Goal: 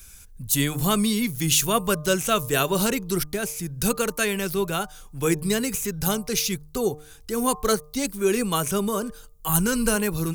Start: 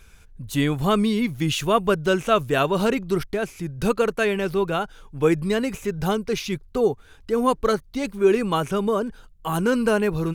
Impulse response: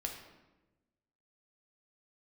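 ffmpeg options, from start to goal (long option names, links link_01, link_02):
-filter_complex "[0:a]bandreject=frequency=151:width_type=h:width=4,bandreject=frequency=302:width_type=h:width=4,bandreject=frequency=453:width_type=h:width=4,bandreject=frequency=604:width_type=h:width=4,bandreject=frequency=755:width_type=h:width=4,bandreject=frequency=906:width_type=h:width=4,bandreject=frequency=1057:width_type=h:width=4,bandreject=frequency=1208:width_type=h:width=4,acrossover=split=250|1300|3800[link_01][link_02][link_03][link_04];[link_02]flanger=delay=3.3:depth=2.8:regen=58:speed=0.49:shape=triangular[link_05];[link_04]crystalizer=i=4:c=0[link_06];[link_01][link_05][link_03][link_06]amix=inputs=4:normalize=0,asplit=3[link_07][link_08][link_09];[link_07]afade=type=out:start_time=9.48:duration=0.02[link_10];[link_08]asubboost=boost=4:cutoff=130,afade=type=in:start_time=9.48:duration=0.02,afade=type=out:start_time=9.95:duration=0.02[link_11];[link_09]afade=type=in:start_time=9.95:duration=0.02[link_12];[link_10][link_11][link_12]amix=inputs=3:normalize=0"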